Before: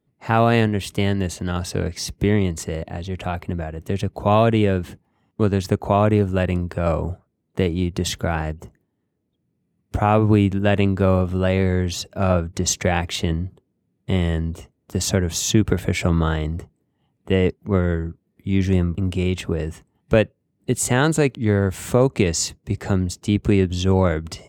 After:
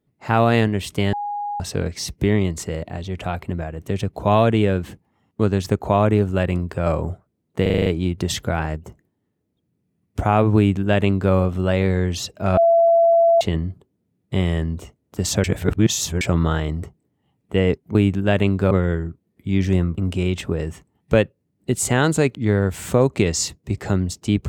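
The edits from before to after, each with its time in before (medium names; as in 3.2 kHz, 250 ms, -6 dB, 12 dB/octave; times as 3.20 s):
1.13–1.60 s: bleep 823 Hz -23.5 dBFS
7.62 s: stutter 0.04 s, 7 plays
10.33–11.09 s: copy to 17.71 s
12.33–13.17 s: bleep 672 Hz -11 dBFS
15.20–15.97 s: reverse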